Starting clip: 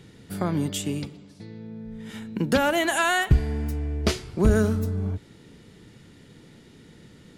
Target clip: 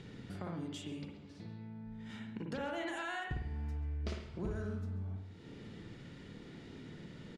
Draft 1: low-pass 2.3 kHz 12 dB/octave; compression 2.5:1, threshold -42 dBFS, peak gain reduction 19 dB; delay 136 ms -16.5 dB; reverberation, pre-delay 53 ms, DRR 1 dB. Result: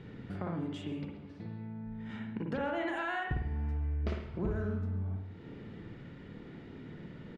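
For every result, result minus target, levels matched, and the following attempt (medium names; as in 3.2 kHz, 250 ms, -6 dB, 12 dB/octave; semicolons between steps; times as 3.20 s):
4 kHz band -6.5 dB; compression: peak gain reduction -5 dB
low-pass 5.6 kHz 12 dB/octave; compression 2.5:1, threshold -42 dBFS, peak gain reduction 19 dB; delay 136 ms -16.5 dB; reverberation, pre-delay 53 ms, DRR 1 dB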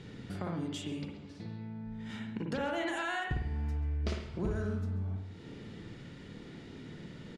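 compression: peak gain reduction -5 dB
low-pass 5.6 kHz 12 dB/octave; compression 2.5:1, threshold -50.5 dBFS, peak gain reduction 24 dB; delay 136 ms -16.5 dB; reverberation, pre-delay 53 ms, DRR 1 dB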